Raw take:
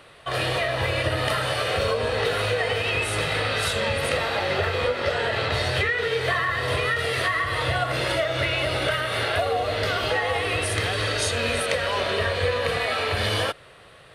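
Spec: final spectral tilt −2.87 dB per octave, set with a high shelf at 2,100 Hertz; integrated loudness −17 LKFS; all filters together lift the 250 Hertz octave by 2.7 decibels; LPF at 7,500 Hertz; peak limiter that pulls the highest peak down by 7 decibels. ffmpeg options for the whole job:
ffmpeg -i in.wav -af "lowpass=7500,equalizer=frequency=250:width_type=o:gain=4,highshelf=frequency=2100:gain=-3.5,volume=10dB,alimiter=limit=-8dB:level=0:latency=1" out.wav

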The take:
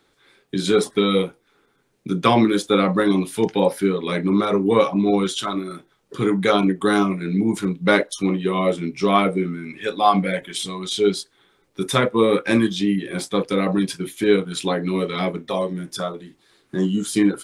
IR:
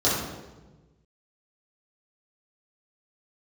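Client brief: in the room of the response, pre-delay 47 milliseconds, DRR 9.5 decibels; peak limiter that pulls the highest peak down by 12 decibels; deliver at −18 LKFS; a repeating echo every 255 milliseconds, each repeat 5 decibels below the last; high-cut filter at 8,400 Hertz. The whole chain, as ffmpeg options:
-filter_complex "[0:a]lowpass=8400,alimiter=limit=-13dB:level=0:latency=1,aecho=1:1:255|510|765|1020|1275|1530|1785:0.562|0.315|0.176|0.0988|0.0553|0.031|0.0173,asplit=2[link_01][link_02];[1:a]atrim=start_sample=2205,adelay=47[link_03];[link_02][link_03]afir=irnorm=-1:irlink=0,volume=-25dB[link_04];[link_01][link_04]amix=inputs=2:normalize=0,volume=3.5dB"

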